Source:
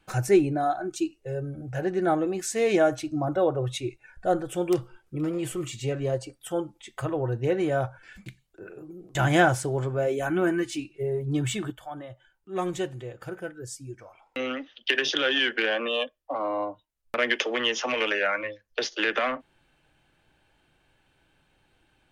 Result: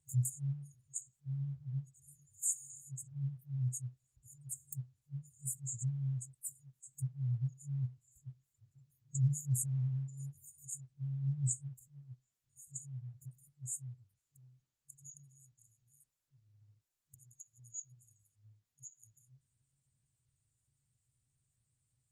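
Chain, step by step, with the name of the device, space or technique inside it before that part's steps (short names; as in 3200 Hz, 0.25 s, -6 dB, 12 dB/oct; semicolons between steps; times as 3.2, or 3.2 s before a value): FFT band-reject 150–6600 Hz; noise-suppressed video call (HPF 170 Hz 12 dB/oct; spectral gate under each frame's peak -20 dB strong; gain +2.5 dB; Opus 16 kbps 48000 Hz)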